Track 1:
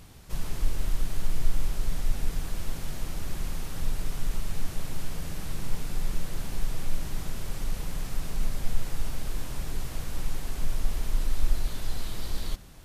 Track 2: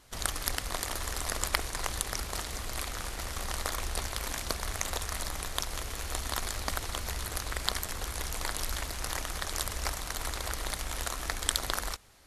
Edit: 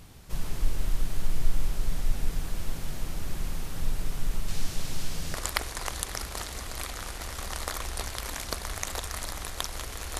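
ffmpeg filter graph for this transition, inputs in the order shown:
-filter_complex "[0:a]asettb=1/sr,asplit=3[s0][s1][s2];[s0]atrim=end=4.484[s3];[s1]atrim=start=4.48:end=5.34,asetpts=PTS-STARTPTS,afade=t=in:d=0.004:c=qsin,afade=t=out:st=0.856:d=0.004:c=qsin,equalizer=f=5100:t=o:w=1.9:g=7.5[s4];[s2]atrim=start=5.336[s5];[s3][s4]acrossfade=d=0.004:c1=hsin:c2=qsin[s6];[s6][s5]acrossfade=d=0.004:c1=qsin:c2=hsin,apad=whole_dur=10.19,atrim=end=10.19,atrim=end=5.342[s7];[1:a]atrim=start=1.318:end=6.17[s8];[s7][s8]acrossfade=d=0.004:c1=hsin:c2=hsin"

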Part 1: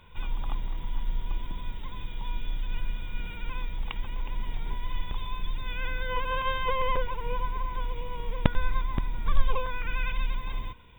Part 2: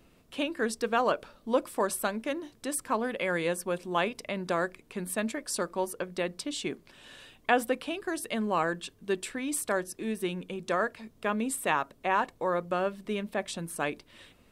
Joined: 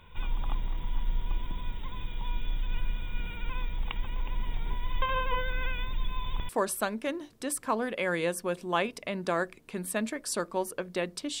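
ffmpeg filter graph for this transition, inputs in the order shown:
-filter_complex "[0:a]apad=whole_dur=11.4,atrim=end=11.4,asplit=2[s0][s1];[s0]atrim=end=5.022[s2];[s1]atrim=start=5.018:end=6.492,asetpts=PTS-STARTPTS,areverse[s3];[1:a]atrim=start=1.708:end=6.62[s4];[s2][s3]acrossfade=d=0.004:c1=hsin:c2=hsin[s5];[s5][s4]acrossfade=d=0.004:c1=hsin:c2=hsin"

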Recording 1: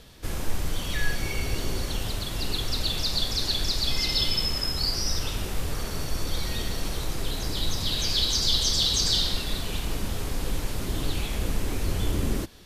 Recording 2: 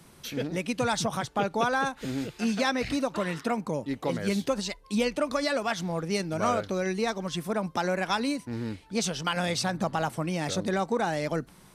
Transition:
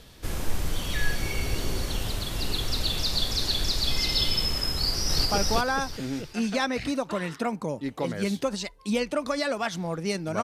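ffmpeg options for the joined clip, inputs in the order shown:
-filter_complex "[0:a]apad=whole_dur=10.43,atrim=end=10.43,atrim=end=5.252[s0];[1:a]atrim=start=1.298:end=6.48[s1];[s0][s1]acrossfade=d=0.004:c1=hsin:c2=hsin,asplit=2[s2][s3];[s3]afade=t=in:st=4.73:d=0.01,afade=t=out:st=5.25:d=0.01,aecho=0:1:360|720|1080|1440:1|0.3|0.09|0.027[s4];[s2][s4]amix=inputs=2:normalize=0"

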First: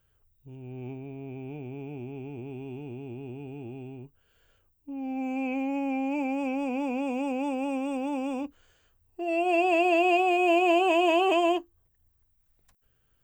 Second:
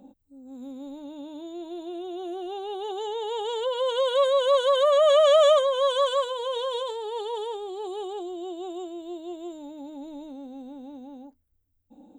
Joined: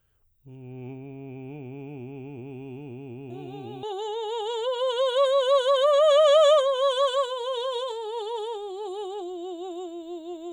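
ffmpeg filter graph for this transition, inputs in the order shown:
-filter_complex "[1:a]asplit=2[s0][s1];[0:a]apad=whole_dur=10.52,atrim=end=10.52,atrim=end=3.832[s2];[s1]atrim=start=2.818:end=9.51[s3];[s0]atrim=start=2.29:end=2.82,asetpts=PTS-STARTPTS,volume=0.376,afade=t=in:d=0.004:c=hsin,afade=t=out:st=0.526:d=0.004:c=hsin,adelay=3300[s4];[s2][s3]acrossfade=d=0.004:c1=hsin:c2=hsin[s5];[s5][s4]amix=inputs=2:normalize=0"

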